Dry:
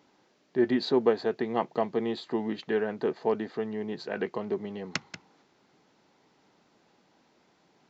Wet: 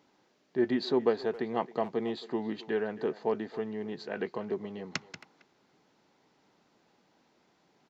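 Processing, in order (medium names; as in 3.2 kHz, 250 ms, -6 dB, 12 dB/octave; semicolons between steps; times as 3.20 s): speakerphone echo 270 ms, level -16 dB; trim -3 dB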